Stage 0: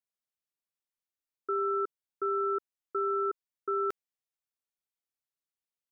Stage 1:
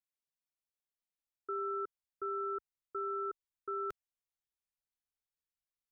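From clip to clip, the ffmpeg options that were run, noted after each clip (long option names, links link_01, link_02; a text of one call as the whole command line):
ffmpeg -i in.wav -af "asubboost=boost=5.5:cutoff=110,volume=-6.5dB" out.wav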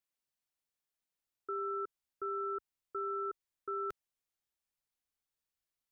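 ffmpeg -i in.wav -af "alimiter=level_in=9.5dB:limit=-24dB:level=0:latency=1:release=46,volume=-9.5dB,volume=2.5dB" out.wav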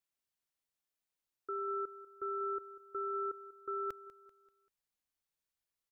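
ffmpeg -i in.wav -af "aecho=1:1:194|388|582|776:0.158|0.0666|0.028|0.0117,volume=-1dB" out.wav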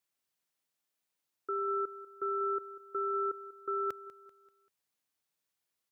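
ffmpeg -i in.wav -af "highpass=110,volume=4.5dB" out.wav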